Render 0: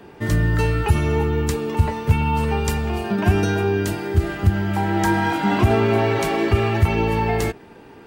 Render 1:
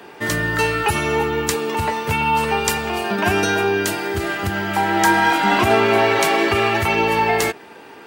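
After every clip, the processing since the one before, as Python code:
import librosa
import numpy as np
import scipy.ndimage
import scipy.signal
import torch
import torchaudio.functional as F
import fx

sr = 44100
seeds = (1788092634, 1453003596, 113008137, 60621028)

y = fx.highpass(x, sr, hz=760.0, slope=6)
y = F.gain(torch.from_numpy(y), 8.5).numpy()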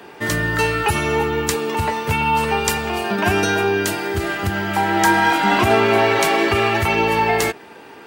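y = fx.low_shelf(x, sr, hz=120.0, db=3.5)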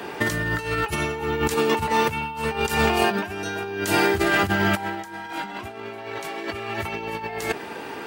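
y = fx.over_compress(x, sr, threshold_db=-24.0, ratio=-0.5)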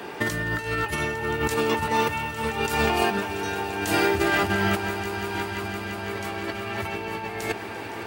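y = fx.echo_swell(x, sr, ms=171, loudest=5, wet_db=-15.5)
y = F.gain(torch.from_numpy(y), -2.5).numpy()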